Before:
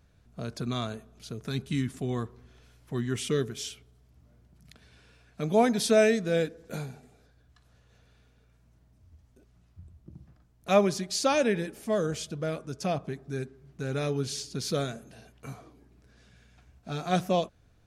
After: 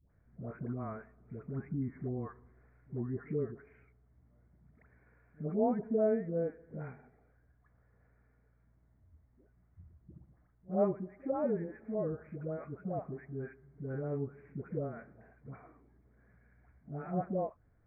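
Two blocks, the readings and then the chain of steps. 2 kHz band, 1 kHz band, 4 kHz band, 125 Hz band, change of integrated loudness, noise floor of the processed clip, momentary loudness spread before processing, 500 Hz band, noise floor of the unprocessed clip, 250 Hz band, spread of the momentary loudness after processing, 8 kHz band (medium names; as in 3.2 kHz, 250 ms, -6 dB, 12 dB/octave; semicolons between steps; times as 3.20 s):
-18.5 dB, -10.5 dB, under -40 dB, -6.5 dB, -8.0 dB, -69 dBFS, 17 LU, -7.5 dB, -63 dBFS, -6.5 dB, 16 LU, under -40 dB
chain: steep low-pass 2.2 kHz 96 dB/octave; phase dispersion highs, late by 112 ms, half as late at 700 Hz; reverse echo 64 ms -22.5 dB; low-pass that closes with the level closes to 720 Hz, closed at -26 dBFS; trim -6.5 dB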